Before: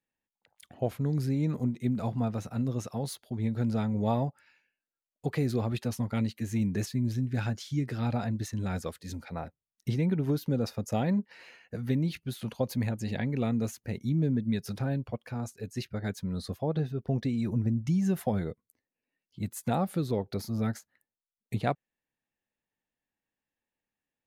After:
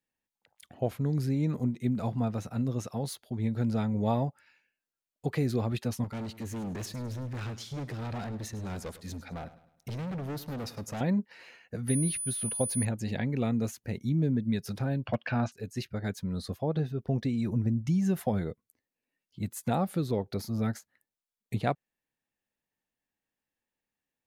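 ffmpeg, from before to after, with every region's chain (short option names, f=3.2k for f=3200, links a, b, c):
-filter_complex "[0:a]asettb=1/sr,asplit=3[a][b][c];[a]atrim=end=6.044[d];[b]atrim=start=6.04:end=11.01,asetpts=PTS-STARTPTS,afade=t=in:d=0.004:c=qsin,afade=t=out:st=4.966:d=0.004:c=qsin,volume=34dB,asoftclip=hard,volume=-34dB,aecho=1:1:104|208|312|416:0.168|0.0688|0.0282|0.0116,atrim=end_sample=219177[e];[c]atrim=start=11.006[f];[d][e]acrossfade=d=0.004:c1=hsin:c2=qsin[g];[g][f]acrossfade=d=0.004:c1=qsin:c2=hsin,asettb=1/sr,asplit=3[h][i][j];[h]atrim=end=11.884[k];[i]atrim=start=11.88:end=12.85,asetpts=PTS-STARTPTS,afade=t=in:d=0.004:c=qsin,afade=t=out:st=0.966:d=0.004:c=qsin,highshelf=f=10k:g=-3.5,aeval=exprs='val(0)+0.0251*sin(2*PI*9900*n/s)':c=same,bandreject=f=1.1k:w=9.6[l];[j]atrim=start=12.846[m];[k][l]acrossfade=d=0.004:c1=hsin:c2=qsin[n];[n][m]acrossfade=d=0.004:c1=qsin:c2=hsin,asettb=1/sr,asplit=3[o][p][q];[o]atrim=end=15.054[r];[p]atrim=start=15.05:end=15.52,asetpts=PTS-STARTPTS,afade=t=in:d=0.004:c=qsin,afade=t=out:st=0.466:d=0.004:c=qsin,highpass=110,equalizer=f=440:t=q:w=4:g=-10,equalizer=f=640:t=q:w=4:g=5,equalizer=f=1.6k:t=q:w=4:g=8,equalizer=f=2.8k:t=q:w=4:g=10,lowpass=f=4.8k:w=0.5412,lowpass=f=4.8k:w=1.3066,acontrast=86,volume=17.5dB,asoftclip=hard,volume=-17.5dB[s];[q]atrim=start=15.516[t];[r][s]acrossfade=d=0.004:c1=hsin:c2=qsin[u];[u][t]acrossfade=d=0.004:c1=qsin:c2=hsin"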